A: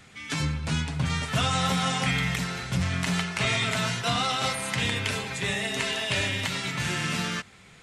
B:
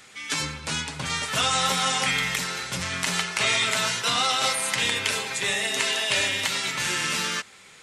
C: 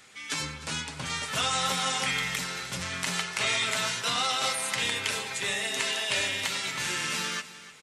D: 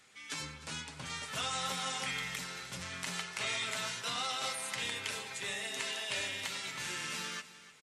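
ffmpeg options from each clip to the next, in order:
-af "bass=f=250:g=-14,treble=f=4000:g=5,bandreject=f=700:w=12,volume=1.41"
-af "aecho=1:1:303|606|909:0.158|0.0475|0.0143,volume=0.596"
-af "aresample=32000,aresample=44100,volume=0.376"

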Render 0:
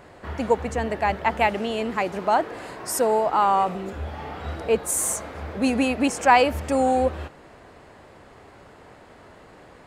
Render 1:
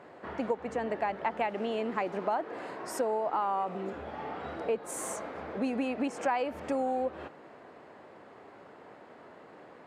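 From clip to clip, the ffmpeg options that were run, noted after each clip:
-af "lowpass=f=1800:p=1,acompressor=threshold=0.0562:ratio=6,highpass=210,volume=0.794"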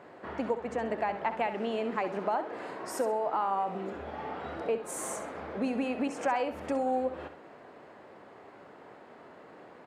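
-af "aecho=1:1:66|132|198:0.282|0.0789|0.0221"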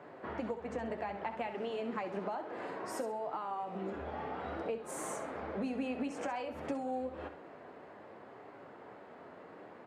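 -filter_complex "[0:a]acrossover=split=160|3000[s0][s1][s2];[s1]acompressor=threshold=0.0178:ratio=6[s3];[s0][s3][s2]amix=inputs=3:normalize=0,flanger=delay=6.5:depth=5.8:regen=-49:speed=0.59:shape=triangular,highshelf=f=3900:g=-7.5,volume=1.5"

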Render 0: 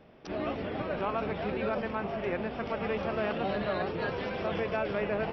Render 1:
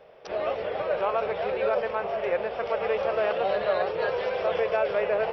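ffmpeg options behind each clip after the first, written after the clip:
-af "lowshelf=f=370:t=q:w=3:g=-9.5,volume=1.41"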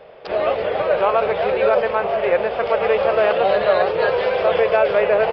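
-af "aresample=11025,aresample=44100,volume=2.82"

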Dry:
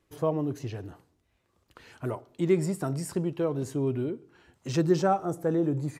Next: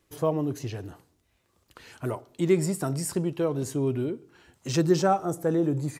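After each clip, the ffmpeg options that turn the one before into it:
-af "highshelf=f=3900:g=7,volume=1.19"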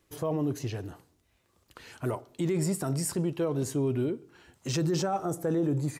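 -af "alimiter=limit=0.0944:level=0:latency=1:release=12"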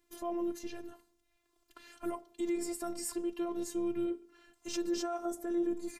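-af "afftfilt=real='hypot(re,im)*cos(PI*b)':imag='0':win_size=512:overlap=0.75,volume=0.75"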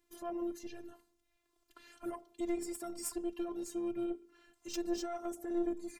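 -af "aeval=exprs='0.106*(cos(1*acos(clip(val(0)/0.106,-1,1)))-cos(1*PI/2))+0.0119*(cos(3*acos(clip(val(0)/0.106,-1,1)))-cos(3*PI/2))+0.0119*(cos(4*acos(clip(val(0)/0.106,-1,1)))-cos(4*PI/2))':c=same,volume=1.12"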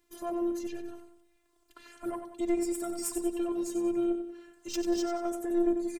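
-af "aecho=1:1:93|186|279|372|465:0.355|0.156|0.0687|0.0302|0.0133,volume=1.78"

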